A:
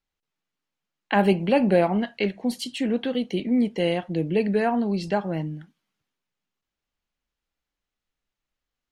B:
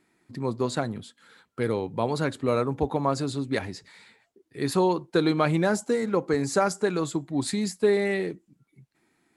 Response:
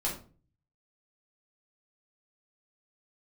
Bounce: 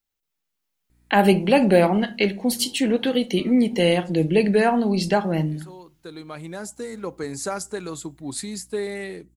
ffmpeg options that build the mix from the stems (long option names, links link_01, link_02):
-filter_complex "[0:a]volume=-4dB,asplit=3[link_01][link_02][link_03];[link_02]volume=-17.5dB[link_04];[1:a]aeval=exprs='val(0)+0.00282*(sin(2*PI*60*n/s)+sin(2*PI*2*60*n/s)/2+sin(2*PI*3*60*n/s)/3+sin(2*PI*4*60*n/s)/4+sin(2*PI*5*60*n/s)/5)':channel_layout=same,adelay=900,volume=-13.5dB[link_05];[link_03]apad=whole_len=452516[link_06];[link_05][link_06]sidechaincompress=threshold=-44dB:ratio=8:attack=27:release=1280[link_07];[2:a]atrim=start_sample=2205[link_08];[link_04][link_08]afir=irnorm=-1:irlink=0[link_09];[link_01][link_07][link_09]amix=inputs=3:normalize=0,aemphasis=mode=production:type=50kf,dynaudnorm=framelen=110:gausssize=17:maxgain=7.5dB"